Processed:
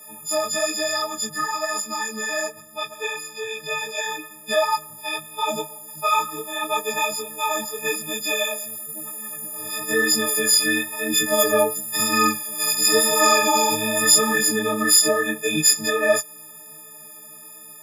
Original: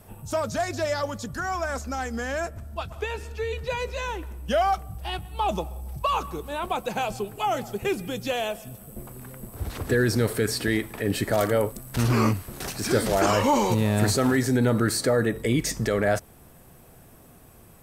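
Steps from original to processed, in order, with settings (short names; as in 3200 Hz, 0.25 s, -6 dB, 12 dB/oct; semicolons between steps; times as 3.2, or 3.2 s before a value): frequency quantiser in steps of 6 st; chorus voices 4, 0.97 Hz, delay 16 ms, depth 4.1 ms; Bessel high-pass 250 Hz, order 8; gain +3.5 dB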